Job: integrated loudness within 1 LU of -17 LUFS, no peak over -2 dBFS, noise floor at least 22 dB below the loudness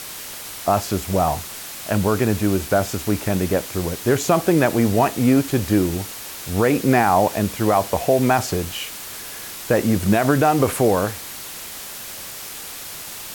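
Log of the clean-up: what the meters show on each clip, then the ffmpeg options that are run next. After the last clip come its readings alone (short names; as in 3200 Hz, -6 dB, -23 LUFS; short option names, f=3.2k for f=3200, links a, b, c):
noise floor -34 dBFS; noise floor target -42 dBFS; loudness -20.0 LUFS; peak -5.5 dBFS; loudness target -17.0 LUFS
-> -af "afftdn=nr=8:nf=-34"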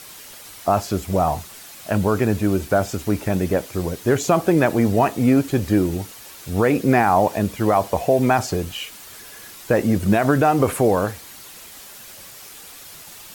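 noise floor -41 dBFS; noise floor target -42 dBFS
-> -af "afftdn=nr=6:nf=-41"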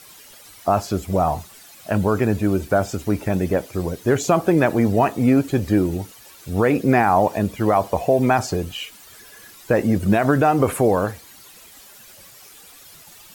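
noise floor -46 dBFS; loudness -20.0 LUFS; peak -5.5 dBFS; loudness target -17.0 LUFS
-> -af "volume=3dB"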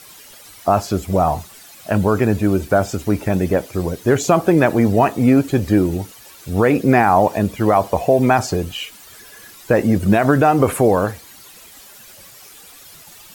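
loudness -17.0 LUFS; peak -2.5 dBFS; noise floor -43 dBFS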